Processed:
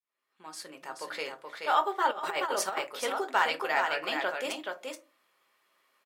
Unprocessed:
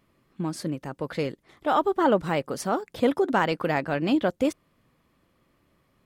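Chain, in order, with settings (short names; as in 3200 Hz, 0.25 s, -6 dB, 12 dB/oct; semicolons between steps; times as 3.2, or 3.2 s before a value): opening faded in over 0.91 s; HPF 960 Hz 12 dB/oct; echo 0.427 s -4.5 dB; reverb RT60 0.30 s, pre-delay 5 ms, DRR 6 dB; 2.11–2.87 negative-ratio compressor -31 dBFS, ratio -0.5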